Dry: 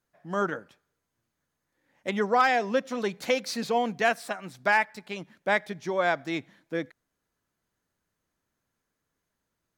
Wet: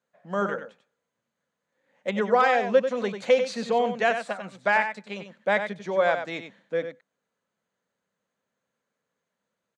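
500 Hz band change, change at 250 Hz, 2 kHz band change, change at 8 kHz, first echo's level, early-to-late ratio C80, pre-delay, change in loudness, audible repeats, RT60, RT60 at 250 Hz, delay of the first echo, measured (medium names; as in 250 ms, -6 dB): +5.0 dB, 0.0 dB, +0.5 dB, -4.0 dB, -8.5 dB, no reverb, no reverb, +2.5 dB, 1, no reverb, no reverb, 94 ms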